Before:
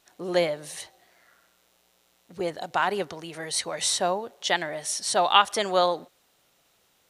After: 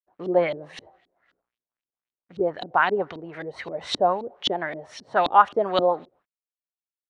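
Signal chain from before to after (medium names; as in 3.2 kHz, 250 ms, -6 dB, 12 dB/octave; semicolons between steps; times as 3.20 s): expander -51 dBFS; word length cut 12-bit, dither none; LFO low-pass saw up 3.8 Hz 270–3800 Hz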